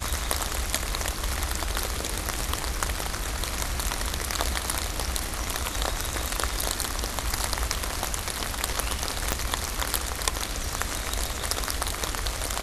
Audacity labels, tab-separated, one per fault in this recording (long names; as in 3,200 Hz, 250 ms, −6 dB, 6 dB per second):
9.320000	9.320000	click −6 dBFS